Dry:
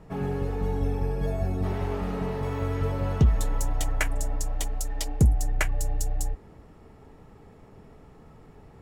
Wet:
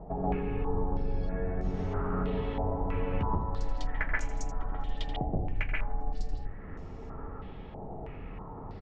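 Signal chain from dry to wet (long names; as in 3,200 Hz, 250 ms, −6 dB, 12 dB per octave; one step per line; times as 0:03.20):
sub-octave generator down 2 octaves, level +3 dB
0:02.63–0:05.11: parametric band 960 Hz +4.5 dB 0.77 octaves
downward compressor 4 to 1, threshold −35 dBFS, peak gain reduction 21 dB
high-frequency loss of the air 80 metres
repeating echo 82 ms, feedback 60%, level −11 dB
convolution reverb, pre-delay 125 ms, DRR −2.5 dB
low-pass on a step sequencer 3.1 Hz 740–6,300 Hz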